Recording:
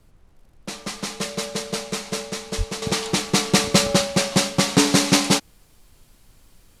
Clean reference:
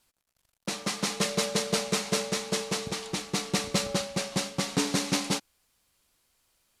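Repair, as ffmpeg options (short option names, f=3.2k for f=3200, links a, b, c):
-filter_complex "[0:a]asplit=3[a][b][c];[a]afade=t=out:st=2.57:d=0.02[d];[b]highpass=f=140:w=0.5412,highpass=f=140:w=1.3066,afade=t=in:st=2.57:d=0.02,afade=t=out:st=2.69:d=0.02[e];[c]afade=t=in:st=2.69:d=0.02[f];[d][e][f]amix=inputs=3:normalize=0,agate=range=-21dB:threshold=-46dB,asetnsamples=n=441:p=0,asendcmd='2.82 volume volume -10.5dB',volume=0dB"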